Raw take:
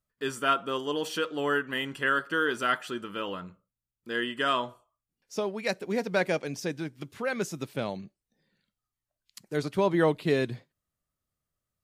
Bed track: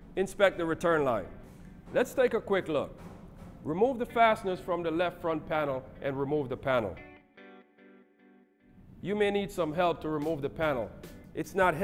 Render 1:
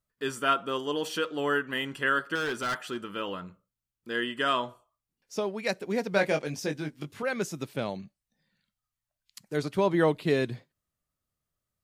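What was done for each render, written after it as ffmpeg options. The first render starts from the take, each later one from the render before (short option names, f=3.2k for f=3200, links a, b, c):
-filter_complex "[0:a]asettb=1/sr,asplit=3[a][b][c];[a]atrim=end=2.354[d];[b]atrim=start=2.35:end=2.98,asetpts=PTS-STARTPTS,afade=t=in:d=0.004:c=qsin,afade=t=out:st=0.626:d=0.004:c=qsin,asoftclip=type=hard:threshold=-26.5dB[e];[c]atrim=start=2.976[f];[d][e]acrossfade=d=0.004:c1=hsin:c2=qsin[g];[g][f]acrossfade=d=0.004:c1=qsin:c2=hsin,asettb=1/sr,asplit=3[h][i][j];[h]atrim=end=6.124[k];[i]atrim=start=6.12:end=7.23,asetpts=PTS-STARTPTS,afade=t=in:d=0.004:c=qsin,afade=t=out:st=1.106:d=0.004:c=qsin,asplit=2[l][m];[m]adelay=20,volume=-5.5dB[n];[l][n]amix=inputs=2:normalize=0,atrim=end_sample=48951[o];[j]atrim=start=7.226[p];[k][o]acrossfade=d=0.004:c1=hsin:c2=qsin[q];[q][p]acrossfade=d=0.004:c1=qsin:c2=hsin,asettb=1/sr,asplit=3[r][s][t];[r]atrim=end=8.024[u];[s]atrim=start=8.02:end=9.5,asetpts=PTS-STARTPTS,afade=t=in:d=0.004:c=qsin,afade=t=out:st=1.476:d=0.004:c=qsin,equalizer=f=380:w=2:g=-14.5[v];[t]atrim=start=9.496[w];[u][v]acrossfade=d=0.004:c1=hsin:c2=qsin[x];[x][w]acrossfade=d=0.004:c1=qsin:c2=hsin"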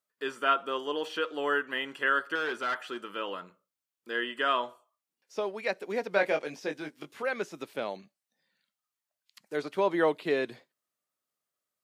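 -filter_complex "[0:a]acrossover=split=3800[a][b];[b]acompressor=threshold=-55dB:ratio=4:attack=1:release=60[c];[a][c]amix=inputs=2:normalize=0,highpass=360"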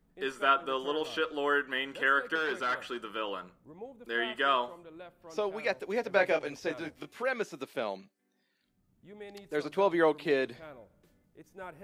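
-filter_complex "[1:a]volume=-19dB[a];[0:a][a]amix=inputs=2:normalize=0"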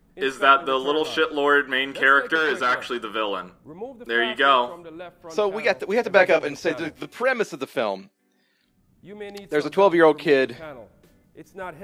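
-af "volume=10dB"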